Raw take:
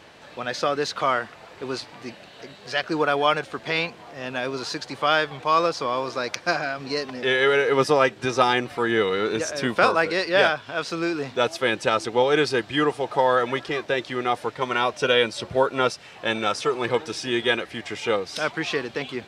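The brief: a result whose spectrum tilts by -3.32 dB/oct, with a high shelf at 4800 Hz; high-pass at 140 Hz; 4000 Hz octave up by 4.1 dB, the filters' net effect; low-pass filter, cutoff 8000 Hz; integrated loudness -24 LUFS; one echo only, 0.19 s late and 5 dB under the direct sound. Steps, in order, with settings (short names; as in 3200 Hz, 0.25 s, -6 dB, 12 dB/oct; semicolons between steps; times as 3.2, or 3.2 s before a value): HPF 140 Hz; LPF 8000 Hz; bell 4000 Hz +7.5 dB; high shelf 4800 Hz -4.5 dB; echo 0.19 s -5 dB; gain -2.5 dB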